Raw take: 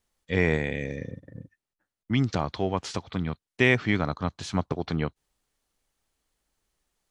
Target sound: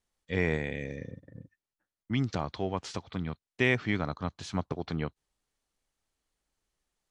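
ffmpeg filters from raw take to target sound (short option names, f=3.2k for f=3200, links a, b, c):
-af "lowpass=11k,volume=-5dB"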